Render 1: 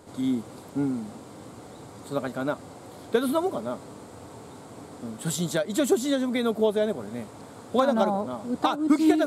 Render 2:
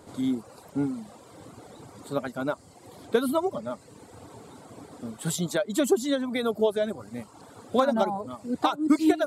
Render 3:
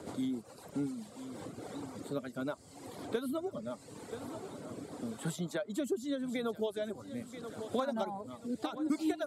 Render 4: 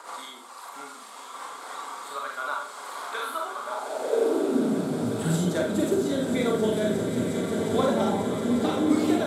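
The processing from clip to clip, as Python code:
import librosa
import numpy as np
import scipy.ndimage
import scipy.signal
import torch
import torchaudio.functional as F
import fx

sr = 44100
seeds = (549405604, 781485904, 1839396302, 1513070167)

y1 = fx.dereverb_blind(x, sr, rt60_s=1.0)
y2 = fx.rotary_switch(y1, sr, hz=7.5, then_hz=0.8, switch_at_s=0.91)
y2 = fx.echo_feedback(y2, sr, ms=982, feedback_pct=37, wet_db=-19.5)
y2 = fx.band_squash(y2, sr, depth_pct=70)
y2 = y2 * 10.0 ** (-7.5 / 20.0)
y3 = fx.echo_swell(y2, sr, ms=179, loudest=8, wet_db=-13)
y3 = fx.filter_sweep_highpass(y3, sr, from_hz=1100.0, to_hz=96.0, start_s=3.63, end_s=5.17, q=3.5)
y3 = fx.rev_schroeder(y3, sr, rt60_s=0.47, comb_ms=33, drr_db=-1.0)
y3 = y3 * 10.0 ** (6.0 / 20.0)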